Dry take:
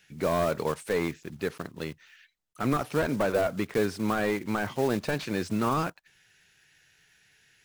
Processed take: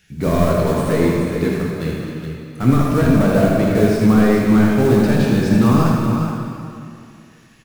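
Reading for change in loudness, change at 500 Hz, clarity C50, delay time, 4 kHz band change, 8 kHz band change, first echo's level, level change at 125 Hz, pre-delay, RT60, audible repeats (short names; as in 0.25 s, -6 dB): +13.0 dB, +10.5 dB, -2.0 dB, 79 ms, +8.0 dB, +9.0 dB, -7.0 dB, +18.5 dB, 13 ms, 2.4 s, 2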